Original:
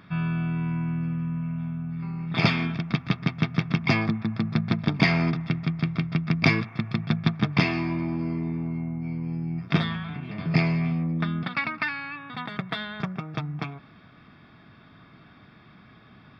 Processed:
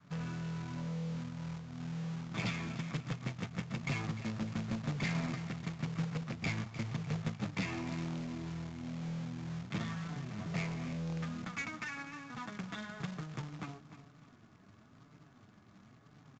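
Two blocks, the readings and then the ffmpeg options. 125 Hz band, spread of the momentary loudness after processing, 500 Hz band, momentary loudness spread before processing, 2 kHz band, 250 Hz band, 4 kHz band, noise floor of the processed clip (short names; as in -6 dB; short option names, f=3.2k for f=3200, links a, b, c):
-12.0 dB, 6 LU, -12.0 dB, 10 LU, -13.5 dB, -12.5 dB, -13.5 dB, -61 dBFS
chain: -filter_complex "[0:a]adynamicequalizer=threshold=0.0126:dfrequency=370:dqfactor=1.4:tfrequency=370:tqfactor=1.4:attack=5:release=100:ratio=0.375:range=2.5:mode=cutabove:tftype=bell,acrossover=split=320|2000[a][b][c];[b]alimiter=limit=-23dB:level=0:latency=1:release=156[d];[a][d][c]amix=inputs=3:normalize=0,flanger=delay=6.7:depth=3.6:regen=16:speed=0.99:shape=sinusoidal,adynamicsmooth=sensitivity=3.5:basefreq=1.5k,asoftclip=type=tanh:threshold=-27.5dB,aecho=1:1:302|604|906|1208:0.224|0.0828|0.0306|0.0113,acrusher=bits=2:mode=log:mix=0:aa=0.000001,aresample=16000,aresample=44100,volume=-4.5dB"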